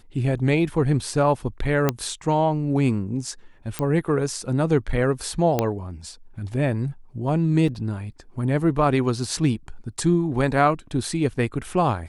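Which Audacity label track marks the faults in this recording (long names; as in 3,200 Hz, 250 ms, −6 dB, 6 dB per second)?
1.890000	1.890000	click −6 dBFS
3.790000	3.790000	click −11 dBFS
5.590000	5.590000	click −7 dBFS
7.680000	7.680000	drop-out 3.8 ms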